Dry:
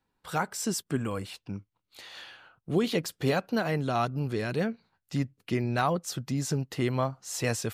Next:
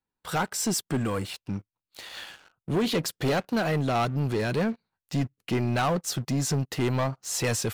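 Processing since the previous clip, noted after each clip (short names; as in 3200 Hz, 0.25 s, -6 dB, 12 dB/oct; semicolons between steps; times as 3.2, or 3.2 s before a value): sample leveller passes 3; gain -5.5 dB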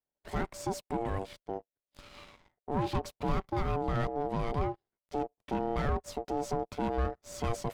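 half-wave gain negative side -7 dB; ring modulator 580 Hz; tilt -2.5 dB/oct; gain -4 dB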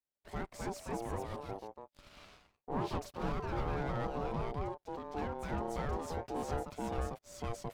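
echoes that change speed 0.297 s, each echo +2 st, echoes 2; gain -7 dB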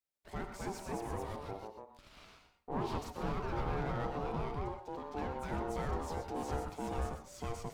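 non-linear reverb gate 0.15 s rising, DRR 6.5 dB; gain -1 dB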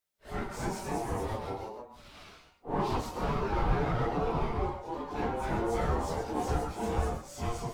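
phase scrambler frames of 0.1 s; gain +6.5 dB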